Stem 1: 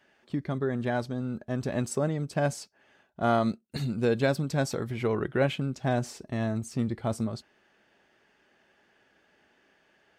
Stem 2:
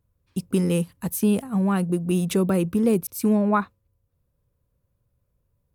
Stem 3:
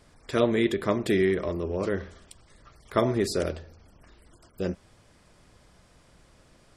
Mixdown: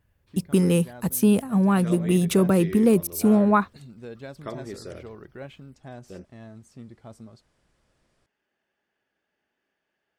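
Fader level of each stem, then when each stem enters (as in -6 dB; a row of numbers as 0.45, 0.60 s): -14.5, +2.0, -12.0 dB; 0.00, 0.00, 1.50 s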